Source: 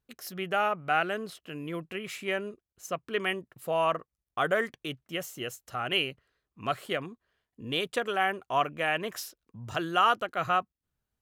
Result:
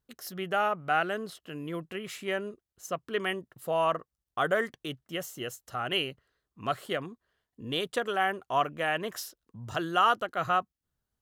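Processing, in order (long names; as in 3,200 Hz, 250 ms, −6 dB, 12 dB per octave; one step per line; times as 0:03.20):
parametric band 2,400 Hz −6.5 dB 0.29 octaves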